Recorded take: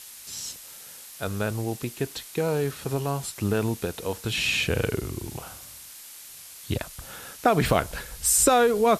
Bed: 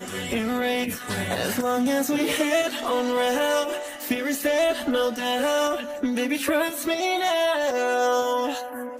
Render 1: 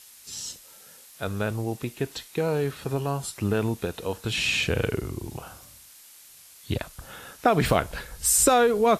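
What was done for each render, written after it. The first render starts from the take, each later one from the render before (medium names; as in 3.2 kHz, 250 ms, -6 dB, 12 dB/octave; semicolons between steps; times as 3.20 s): noise print and reduce 6 dB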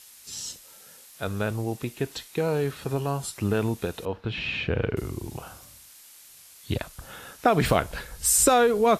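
4.05–4.97 s: distance through air 330 m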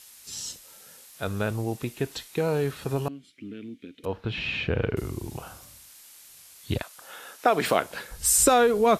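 3.08–4.04 s: vowel filter i; 6.81–8.10 s: high-pass 620 Hz -> 190 Hz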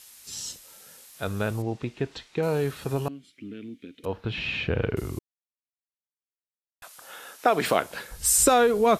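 1.62–2.43 s: distance through air 130 m; 5.19–6.82 s: mute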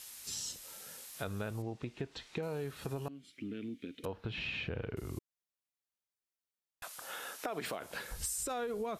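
peak limiter -16 dBFS, peak gain reduction 10.5 dB; compression 4:1, threshold -38 dBFS, peak gain reduction 15 dB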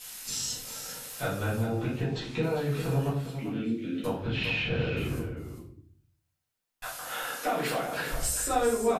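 delay 398 ms -9.5 dB; simulated room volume 67 m³, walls mixed, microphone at 1.9 m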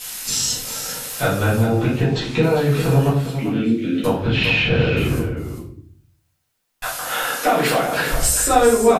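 trim +12 dB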